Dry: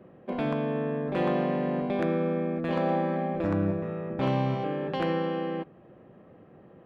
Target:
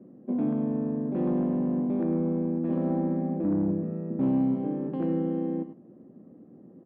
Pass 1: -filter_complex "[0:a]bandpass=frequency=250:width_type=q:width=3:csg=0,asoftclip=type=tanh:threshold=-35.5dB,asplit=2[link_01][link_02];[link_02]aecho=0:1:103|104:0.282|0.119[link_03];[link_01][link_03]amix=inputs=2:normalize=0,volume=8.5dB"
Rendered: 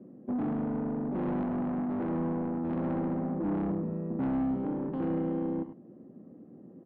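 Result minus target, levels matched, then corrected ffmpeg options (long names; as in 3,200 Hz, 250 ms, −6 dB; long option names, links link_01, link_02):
soft clipping: distortion +14 dB
-filter_complex "[0:a]bandpass=frequency=250:width_type=q:width=3:csg=0,asoftclip=type=tanh:threshold=-24.5dB,asplit=2[link_01][link_02];[link_02]aecho=0:1:103|104:0.282|0.119[link_03];[link_01][link_03]amix=inputs=2:normalize=0,volume=8.5dB"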